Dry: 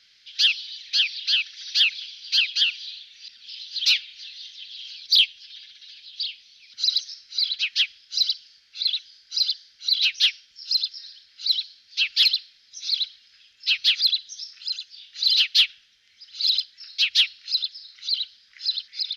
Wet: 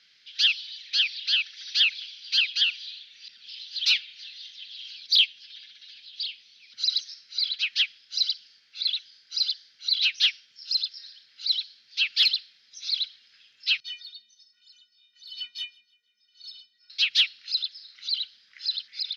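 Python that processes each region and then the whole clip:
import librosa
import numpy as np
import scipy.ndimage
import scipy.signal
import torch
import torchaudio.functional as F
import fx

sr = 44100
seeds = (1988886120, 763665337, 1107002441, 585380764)

y = fx.chain(x, sr, fx.stiff_resonator(f0_hz=220.0, decay_s=0.44, stiffness=0.03),
    fx.echo_feedback(ms=159, feedback_pct=43, wet_db=-24.0), at=(13.8, 16.9))
y = scipy.signal.sosfilt(scipy.signal.butter(4, 120.0, 'highpass', fs=sr, output='sos'), y)
y = fx.high_shelf(y, sr, hz=6300.0, db=-10.5)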